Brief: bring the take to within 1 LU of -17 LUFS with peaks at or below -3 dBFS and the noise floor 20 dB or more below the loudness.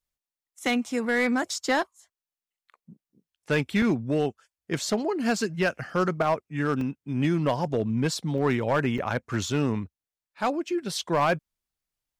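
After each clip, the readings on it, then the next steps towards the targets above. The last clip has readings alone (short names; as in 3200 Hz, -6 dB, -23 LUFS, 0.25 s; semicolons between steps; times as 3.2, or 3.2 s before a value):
clipped 0.7%; flat tops at -16.5 dBFS; dropouts 4; longest dropout 2.2 ms; loudness -27.0 LUFS; peak -16.5 dBFS; loudness target -17.0 LUFS
-> clip repair -16.5 dBFS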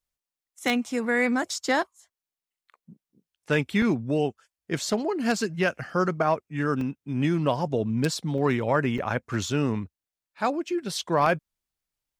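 clipped 0.0%; dropouts 4; longest dropout 2.2 ms
-> interpolate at 3.82/6.81/8.38/8.98, 2.2 ms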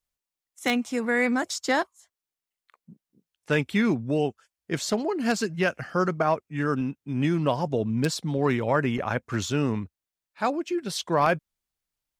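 dropouts 0; loudness -26.5 LUFS; peak -7.5 dBFS; loudness target -17.0 LUFS
-> gain +9.5 dB; limiter -3 dBFS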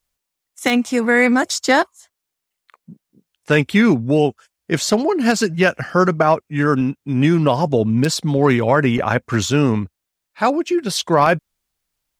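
loudness -17.5 LUFS; peak -3.0 dBFS; noise floor -81 dBFS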